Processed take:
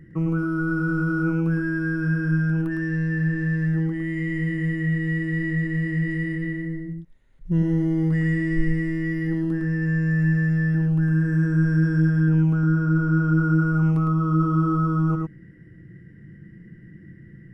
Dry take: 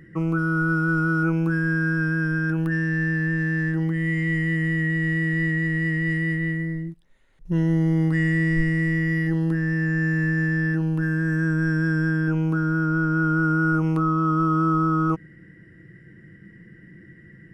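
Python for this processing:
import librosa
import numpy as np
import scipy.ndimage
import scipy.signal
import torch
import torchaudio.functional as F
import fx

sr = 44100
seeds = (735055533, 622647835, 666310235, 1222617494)

y = fx.low_shelf(x, sr, hz=310.0, db=11.5)
y = y + 10.0 ** (-4.5 / 20.0) * np.pad(y, (int(108 * sr / 1000.0), 0))[:len(y)]
y = y * librosa.db_to_amplitude(-7.0)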